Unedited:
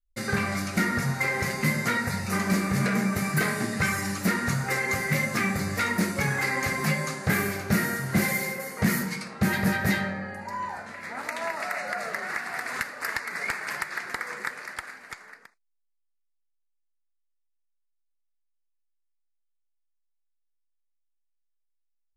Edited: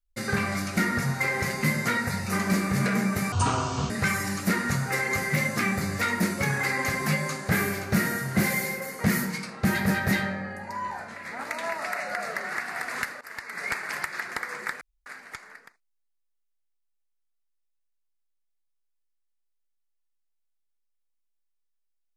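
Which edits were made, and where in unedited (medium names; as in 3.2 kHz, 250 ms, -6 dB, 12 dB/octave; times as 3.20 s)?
3.32–3.68 s: speed 62%
12.99–13.48 s: fade in, from -18.5 dB
14.59–14.84 s: room tone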